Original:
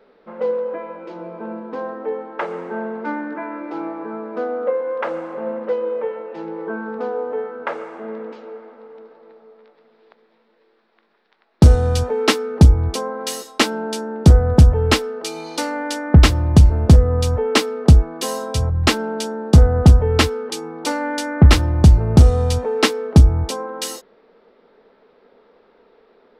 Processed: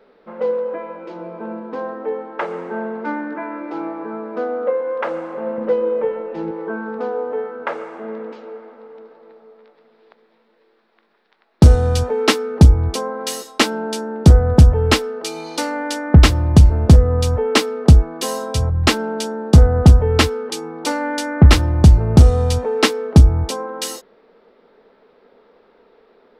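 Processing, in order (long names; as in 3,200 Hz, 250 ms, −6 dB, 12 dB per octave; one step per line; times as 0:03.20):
0:05.58–0:06.51: low-shelf EQ 280 Hz +11 dB
level +1 dB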